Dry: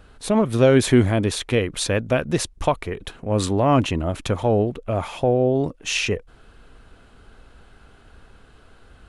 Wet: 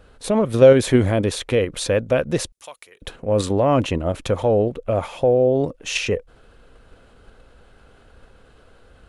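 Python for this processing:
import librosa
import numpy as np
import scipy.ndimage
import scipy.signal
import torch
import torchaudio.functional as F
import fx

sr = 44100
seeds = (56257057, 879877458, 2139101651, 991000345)

p1 = fx.peak_eq(x, sr, hz=520.0, db=8.0, octaves=0.41)
p2 = fx.level_steps(p1, sr, step_db=11)
p3 = p1 + F.gain(torch.from_numpy(p2), 2.0).numpy()
p4 = fx.differentiator(p3, sr, at=(2.52, 3.02))
y = F.gain(torch.from_numpy(p4), -5.5).numpy()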